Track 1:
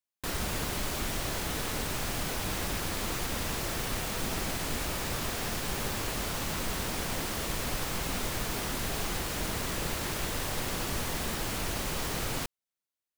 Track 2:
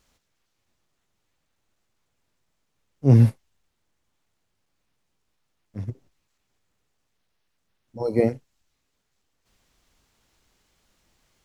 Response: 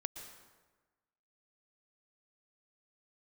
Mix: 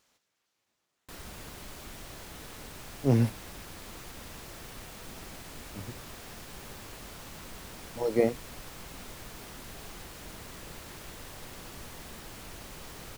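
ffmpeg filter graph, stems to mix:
-filter_complex "[0:a]adelay=850,volume=0.251[s0];[1:a]highpass=f=340:p=1,volume=0.841[s1];[s0][s1]amix=inputs=2:normalize=0"

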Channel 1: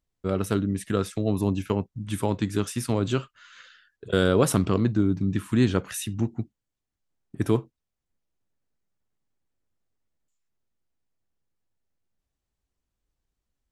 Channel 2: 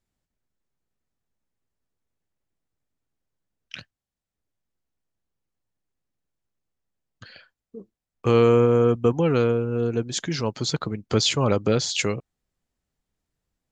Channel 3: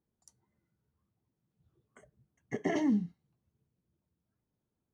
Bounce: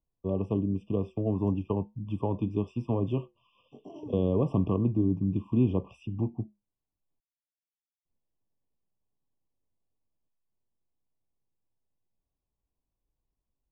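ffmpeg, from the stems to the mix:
-filter_complex "[0:a]lowpass=1700,flanger=delay=6.3:depth=1.1:regen=-80:speed=1.9:shape=triangular,volume=1.19,asplit=3[s0][s1][s2];[s0]atrim=end=7.2,asetpts=PTS-STARTPTS,afade=t=out:st=7.196:d=0.004:c=hsin[s3];[s1]atrim=start=7.2:end=8.05,asetpts=PTS-STARTPTS,volume=0[s4];[s2]atrim=start=8.05,asetpts=PTS-STARTPTS,afade=t=in:d=0.004:c=hsin[s5];[s3][s4][s5]concat=n=3:v=0:a=1[s6];[2:a]flanger=delay=20:depth=5:speed=1.5,adelay=1200,volume=0.282[s7];[s6][s7]amix=inputs=2:normalize=0,highshelf=f=6600:g=-9,acrossover=split=280[s8][s9];[s9]acompressor=threshold=0.0447:ratio=6[s10];[s8][s10]amix=inputs=2:normalize=0,afftfilt=real='re*eq(mod(floor(b*sr/1024/1200),2),0)':imag='im*eq(mod(floor(b*sr/1024/1200),2),0)':win_size=1024:overlap=0.75"

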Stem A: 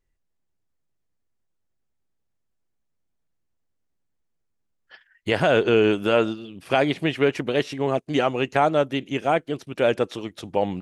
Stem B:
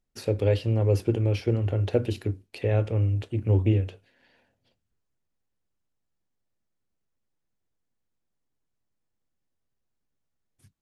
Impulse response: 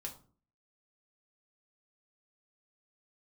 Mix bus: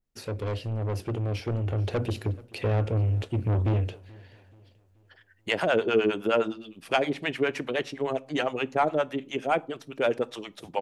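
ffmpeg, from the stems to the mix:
-filter_complex "[0:a]highpass=f=300:p=1,acrossover=split=580[s0][s1];[s0]aeval=exprs='val(0)*(1-1/2+1/2*cos(2*PI*9.7*n/s))':c=same[s2];[s1]aeval=exprs='val(0)*(1-1/2-1/2*cos(2*PI*9.7*n/s))':c=same[s3];[s2][s3]amix=inputs=2:normalize=0,asoftclip=type=tanh:threshold=0.251,adelay=200,volume=1.06,asplit=2[s4][s5];[s5]volume=0.178[s6];[1:a]asoftclip=type=tanh:threshold=0.0531,volume=0.841,asplit=3[s7][s8][s9];[s8]volume=0.0631[s10];[s9]apad=whole_len=485647[s11];[s4][s11]sidechaingate=range=0.501:threshold=0.00112:ratio=16:detection=peak[s12];[2:a]atrim=start_sample=2205[s13];[s6][s13]afir=irnorm=-1:irlink=0[s14];[s10]aecho=0:1:431|862|1293|1724|2155|2586:1|0.43|0.185|0.0795|0.0342|0.0147[s15];[s12][s7][s14][s15]amix=inputs=4:normalize=0,dynaudnorm=f=380:g=9:m=2,adynamicequalizer=threshold=0.01:dfrequency=2300:dqfactor=0.7:tfrequency=2300:tqfactor=0.7:attack=5:release=100:ratio=0.375:range=3:mode=cutabove:tftype=highshelf"

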